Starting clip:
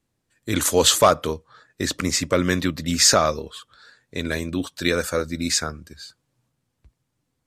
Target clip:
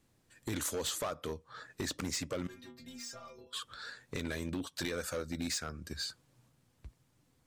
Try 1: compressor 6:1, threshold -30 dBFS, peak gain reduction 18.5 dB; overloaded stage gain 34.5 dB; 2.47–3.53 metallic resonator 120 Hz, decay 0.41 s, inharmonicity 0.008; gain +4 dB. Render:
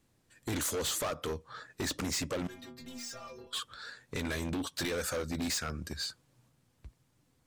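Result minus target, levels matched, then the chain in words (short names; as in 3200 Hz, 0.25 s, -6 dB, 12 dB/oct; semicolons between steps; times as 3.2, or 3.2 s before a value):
compressor: peak gain reduction -6.5 dB
compressor 6:1, threshold -37.5 dBFS, peak gain reduction 25 dB; overloaded stage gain 34.5 dB; 2.47–3.53 metallic resonator 120 Hz, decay 0.41 s, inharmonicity 0.008; gain +4 dB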